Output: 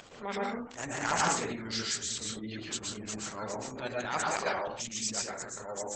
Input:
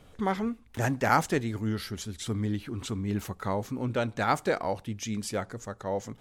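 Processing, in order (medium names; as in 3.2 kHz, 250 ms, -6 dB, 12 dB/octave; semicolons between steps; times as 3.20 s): upward compressor, threshold -29 dBFS; hum notches 60/120/180/240/300/360/420 Hz; transient shaper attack -12 dB, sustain +4 dB; peaking EQ 11 kHz +2 dB 0.36 oct; Chebyshev shaper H 4 -15 dB, 6 -35 dB, 7 -32 dB, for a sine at -9.5 dBFS; hysteresis with a dead band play -47 dBFS; RIAA curve recording; plate-style reverb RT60 0.58 s, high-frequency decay 0.55×, pre-delay 110 ms, DRR -2.5 dB; speed mistake 24 fps film run at 25 fps; integer overflow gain 12.5 dB; spectral gate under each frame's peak -25 dB strong; trim -2.5 dB; Opus 12 kbps 48 kHz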